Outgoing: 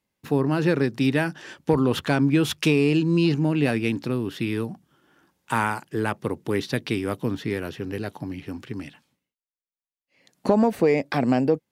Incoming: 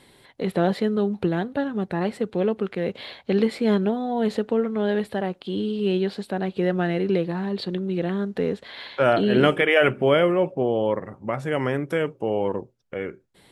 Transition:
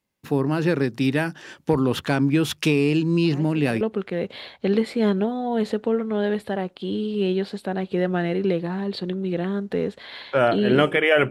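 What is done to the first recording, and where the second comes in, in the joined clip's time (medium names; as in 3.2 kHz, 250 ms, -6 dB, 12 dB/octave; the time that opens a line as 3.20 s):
outgoing
3.32 s: add incoming from 1.97 s 0.49 s -13.5 dB
3.81 s: go over to incoming from 2.46 s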